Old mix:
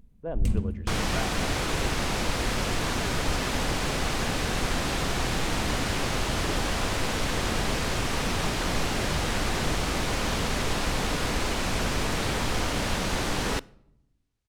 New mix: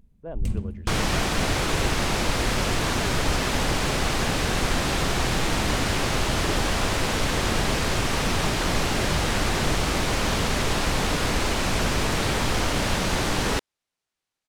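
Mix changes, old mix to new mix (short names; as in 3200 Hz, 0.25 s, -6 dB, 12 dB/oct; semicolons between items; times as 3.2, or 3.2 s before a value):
second sound +5.0 dB; reverb: off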